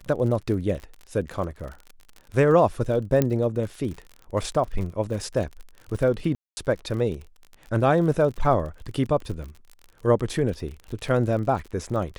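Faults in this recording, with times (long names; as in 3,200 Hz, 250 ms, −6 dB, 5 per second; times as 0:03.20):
surface crackle 45 per second −33 dBFS
0:03.22: click −8 dBFS
0:06.35–0:06.57: drop-out 220 ms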